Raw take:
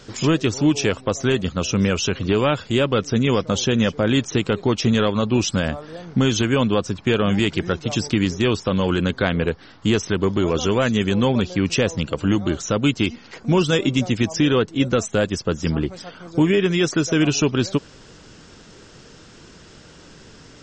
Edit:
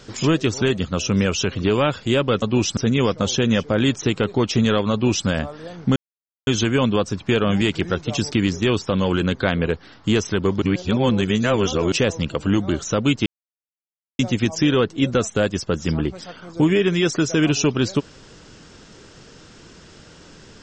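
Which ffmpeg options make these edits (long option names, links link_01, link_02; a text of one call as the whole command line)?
ffmpeg -i in.wav -filter_complex "[0:a]asplit=9[link_01][link_02][link_03][link_04][link_05][link_06][link_07][link_08][link_09];[link_01]atrim=end=0.622[link_10];[link_02]atrim=start=1.258:end=3.062[link_11];[link_03]atrim=start=5.208:end=5.562[link_12];[link_04]atrim=start=3.058:end=6.25,asetpts=PTS-STARTPTS,afade=type=out:start_time=3.188:duration=0.004:curve=hsin,apad=pad_dur=0.51[link_13];[link_05]atrim=start=6.25:end=10.402,asetpts=PTS-STARTPTS,afade=type=in:duration=0.004:curve=hsin[link_14];[link_06]atrim=start=10.398:end=11.702,asetpts=PTS-STARTPTS,areverse[link_15];[link_07]atrim=start=11.698:end=13.04,asetpts=PTS-STARTPTS,afade=type=out:start_time=1.338:duration=0.004:curve=hsin[link_16];[link_08]atrim=start=13.04:end=13.97,asetpts=PTS-STARTPTS,volume=0[link_17];[link_09]atrim=start=13.97,asetpts=PTS-STARTPTS,afade=type=in:duration=0.004:curve=hsin[link_18];[link_10][link_11]acrossfade=duration=0.004:curve1=hsin:curve2=hsin[link_19];[link_19][link_12]acrossfade=duration=0.004:curve1=hsin:curve2=hsin[link_20];[link_13][link_14]concat=n=2:v=0:a=1[link_21];[link_20][link_21]acrossfade=duration=0.004:curve1=hsin:curve2=hsin[link_22];[link_22][link_15]acrossfade=duration=0.004:curve1=hsin:curve2=hsin[link_23];[link_16][link_17][link_18]concat=n=3:v=0:a=1[link_24];[link_23][link_24]acrossfade=duration=0.004:curve1=hsin:curve2=hsin" out.wav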